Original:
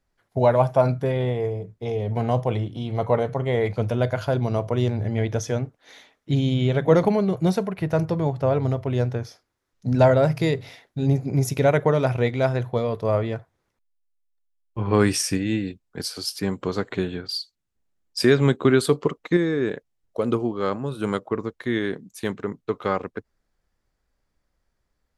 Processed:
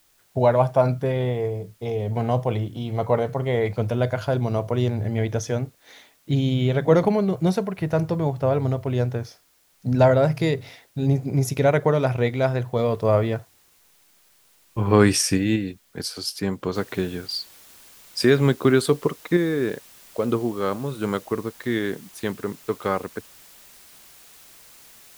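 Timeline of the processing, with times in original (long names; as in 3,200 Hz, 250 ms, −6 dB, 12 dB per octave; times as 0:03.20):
0:12.79–0:15.56: clip gain +3 dB
0:16.75: noise floor change −62 dB −49 dB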